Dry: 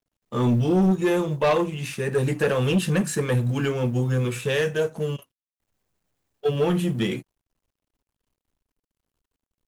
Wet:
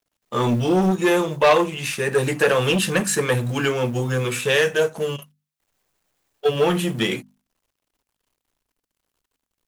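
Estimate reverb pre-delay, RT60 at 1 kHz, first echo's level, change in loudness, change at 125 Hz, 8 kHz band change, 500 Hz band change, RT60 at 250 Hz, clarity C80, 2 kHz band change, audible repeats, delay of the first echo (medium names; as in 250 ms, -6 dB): no reverb, no reverb, no echo, +3.0 dB, -1.5 dB, +8.0 dB, +4.0 dB, no reverb, no reverb, +7.5 dB, no echo, no echo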